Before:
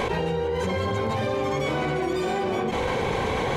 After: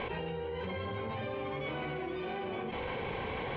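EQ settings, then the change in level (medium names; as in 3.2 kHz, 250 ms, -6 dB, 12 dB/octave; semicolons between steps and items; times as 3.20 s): four-pole ladder low-pass 3.5 kHz, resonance 45%; distance through air 140 m; -3.0 dB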